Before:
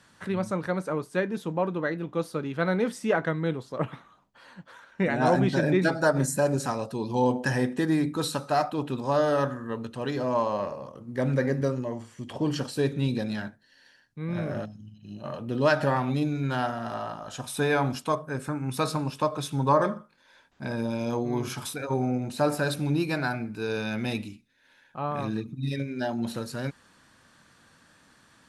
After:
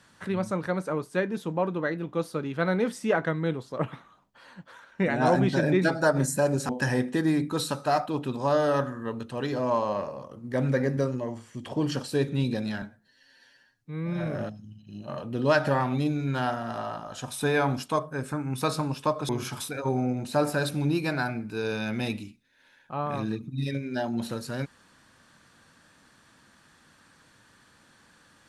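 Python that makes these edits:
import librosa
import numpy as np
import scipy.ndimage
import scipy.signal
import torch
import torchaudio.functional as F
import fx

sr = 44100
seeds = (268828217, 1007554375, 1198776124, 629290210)

y = fx.edit(x, sr, fx.cut(start_s=6.69, length_s=0.64),
    fx.stretch_span(start_s=13.46, length_s=0.96, factor=1.5),
    fx.cut(start_s=19.45, length_s=1.89), tone=tone)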